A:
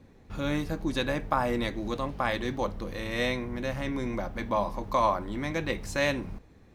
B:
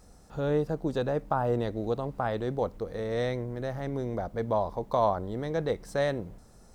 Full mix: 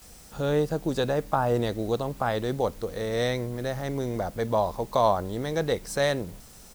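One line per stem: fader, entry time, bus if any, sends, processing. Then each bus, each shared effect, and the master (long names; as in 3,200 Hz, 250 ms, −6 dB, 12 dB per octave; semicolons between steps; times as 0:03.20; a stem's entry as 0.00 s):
−18.5 dB, 0.00 s, no send, high-pass filter 210 Hz; bit-depth reduction 6 bits, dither triangular
+2.5 dB, 18 ms, no send, high-shelf EQ 3,200 Hz +11.5 dB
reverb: not used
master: no processing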